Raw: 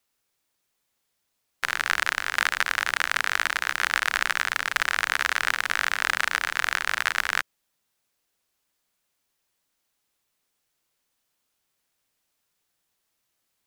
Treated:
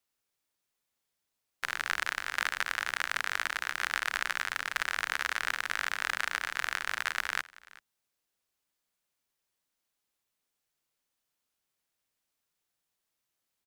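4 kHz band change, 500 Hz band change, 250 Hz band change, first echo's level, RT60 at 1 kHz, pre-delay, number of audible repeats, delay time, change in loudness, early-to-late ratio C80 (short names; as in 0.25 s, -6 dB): -7.5 dB, -7.5 dB, -7.5 dB, -21.5 dB, none, none, 1, 0.381 s, -7.5 dB, none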